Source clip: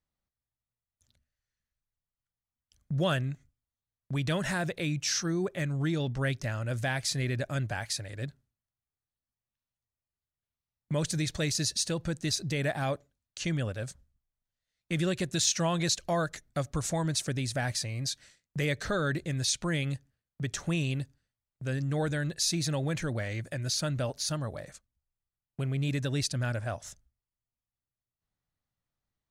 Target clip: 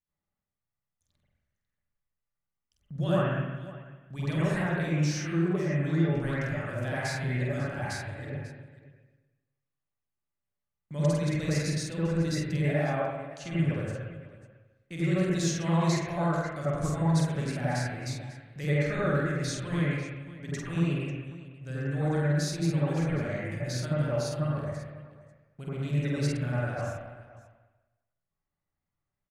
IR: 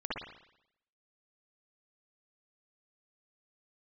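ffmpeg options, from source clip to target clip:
-filter_complex "[0:a]aecho=1:1:48|544:0.668|0.141[a];[1:a]atrim=start_sample=2205,asetrate=29988,aresample=44100[b];[a][b]afir=irnorm=-1:irlink=0,volume=-7.5dB"

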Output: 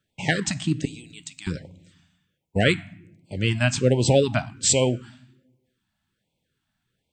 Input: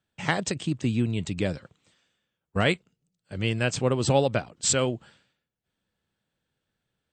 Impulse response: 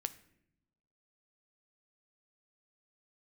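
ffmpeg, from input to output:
-filter_complex "[0:a]asettb=1/sr,asplit=3[a][b][c];[a]atrim=end=0.854[d];[b]atrim=start=0.85:end=1.47,asetpts=PTS-STARTPTS,afade=t=in:d=0.004:c=qsin,afade=t=out:st=0.616:d=0.004:c=qsin,aderivative[e];[c]atrim=start=1.466[f];[d][e]acrossfade=d=0.004:c1=hsin:c2=qsin[g];[g][f]acrossfade=d=0.004:c1=qsin:c2=hsin,asplit=2[h][i];[1:a]atrim=start_sample=2205[j];[i][j]afir=irnorm=-1:irlink=0,volume=7dB[k];[h][k]amix=inputs=2:normalize=0,afftfilt=real='re*(1-between(b*sr/1024,400*pow(1500/400,0.5+0.5*sin(2*PI*1.3*pts/sr))/1.41,400*pow(1500/400,0.5+0.5*sin(2*PI*1.3*pts/sr))*1.41))':imag='im*(1-between(b*sr/1024,400*pow(1500/400,0.5+0.5*sin(2*PI*1.3*pts/sr))/1.41,400*pow(1500/400,0.5+0.5*sin(2*PI*1.3*pts/sr))*1.41))':win_size=1024:overlap=0.75,volume=-5.5dB"

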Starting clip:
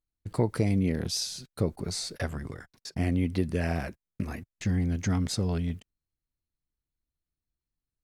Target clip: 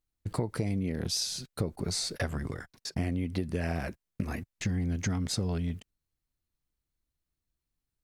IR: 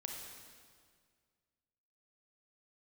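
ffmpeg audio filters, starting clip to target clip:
-af "acompressor=threshold=-30dB:ratio=6,volume=3dB"

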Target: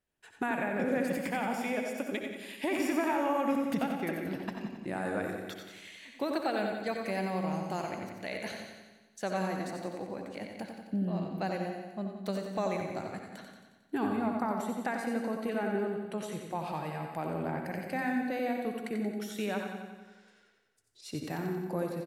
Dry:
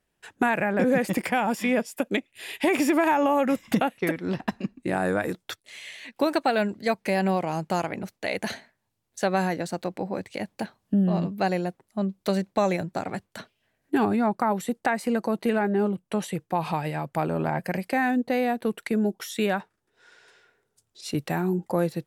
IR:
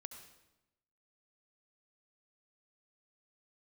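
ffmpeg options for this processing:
-filter_complex "[0:a]aecho=1:1:90|180|270|360|450|540|630|720:0.473|0.284|0.17|0.102|0.0613|0.0368|0.0221|0.0132[a];[1:a]atrim=start_sample=2205,asetrate=48510,aresample=44100[b];[a][b]afir=irnorm=-1:irlink=0,volume=-3.5dB"

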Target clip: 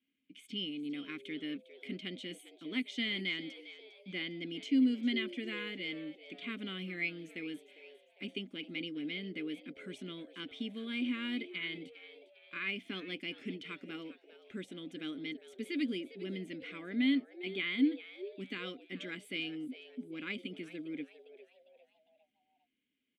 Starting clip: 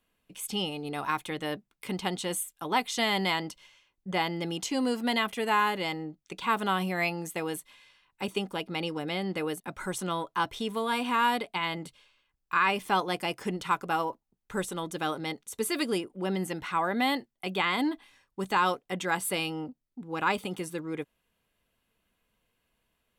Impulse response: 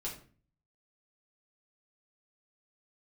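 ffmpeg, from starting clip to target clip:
-filter_complex "[0:a]asplit=3[a][b][c];[a]bandpass=f=270:t=q:w=8,volume=0dB[d];[b]bandpass=f=2.29k:t=q:w=8,volume=-6dB[e];[c]bandpass=f=3.01k:t=q:w=8,volume=-9dB[f];[d][e][f]amix=inputs=3:normalize=0,asplit=5[g][h][i][j][k];[h]adelay=403,afreqshift=110,volume=-15.5dB[l];[i]adelay=806,afreqshift=220,volume=-22.8dB[m];[j]adelay=1209,afreqshift=330,volume=-30.2dB[n];[k]adelay=1612,afreqshift=440,volume=-37.5dB[o];[g][l][m][n][o]amix=inputs=5:normalize=0,volume=4.5dB"

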